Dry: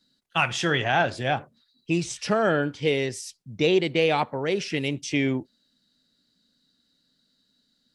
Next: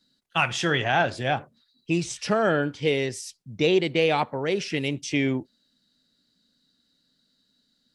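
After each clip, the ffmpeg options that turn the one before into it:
-af anull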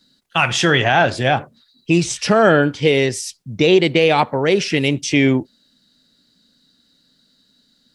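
-af "alimiter=level_in=12.5dB:limit=-1dB:release=50:level=0:latency=1,volume=-2.5dB"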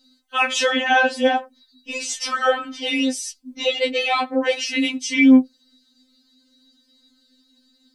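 -af "afftfilt=real='re*3.46*eq(mod(b,12),0)':imag='im*3.46*eq(mod(b,12),0)':win_size=2048:overlap=0.75"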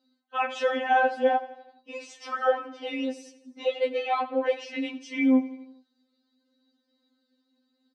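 -af "bandpass=f=660:t=q:w=0.9:csg=0,aecho=1:1:84|168|252|336|420:0.141|0.0819|0.0475|0.0276|0.016,volume=-3dB"

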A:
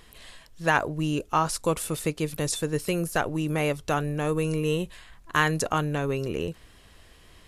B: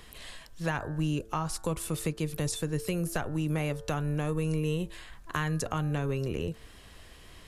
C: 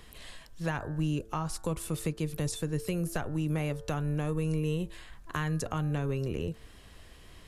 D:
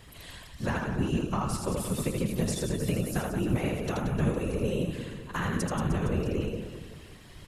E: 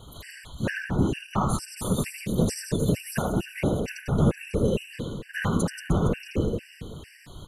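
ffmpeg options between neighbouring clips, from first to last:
-filter_complex "[0:a]bandreject=f=111.7:t=h:w=4,bandreject=f=223.4:t=h:w=4,bandreject=f=335.1:t=h:w=4,bandreject=f=446.8:t=h:w=4,bandreject=f=558.5:t=h:w=4,bandreject=f=670.2:t=h:w=4,bandreject=f=781.9:t=h:w=4,bandreject=f=893.6:t=h:w=4,bandreject=f=1.0053k:t=h:w=4,bandreject=f=1.117k:t=h:w=4,bandreject=f=1.2287k:t=h:w=4,bandreject=f=1.3404k:t=h:w=4,bandreject=f=1.4521k:t=h:w=4,bandreject=f=1.5638k:t=h:w=4,bandreject=f=1.6755k:t=h:w=4,bandreject=f=1.7872k:t=h:w=4,acrossover=split=160[a][b];[b]acompressor=threshold=-35dB:ratio=3[c];[a][c]amix=inputs=2:normalize=0,volume=2dB"
-af "lowshelf=f=460:g=3,volume=-3dB"
-filter_complex "[0:a]asplit=2[a][b];[b]aecho=0:1:80|180|305|461.2|656.6:0.631|0.398|0.251|0.158|0.1[c];[a][c]amix=inputs=2:normalize=0,afftfilt=real='hypot(re,im)*cos(2*PI*random(0))':imag='hypot(re,im)*sin(2*PI*random(1))':win_size=512:overlap=0.75,volume=7dB"
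-af "afftfilt=real='re*gt(sin(2*PI*2.2*pts/sr)*(1-2*mod(floor(b*sr/1024/1500),2)),0)':imag='im*gt(sin(2*PI*2.2*pts/sr)*(1-2*mod(floor(b*sr/1024/1500),2)),0)':win_size=1024:overlap=0.75,volume=6dB"

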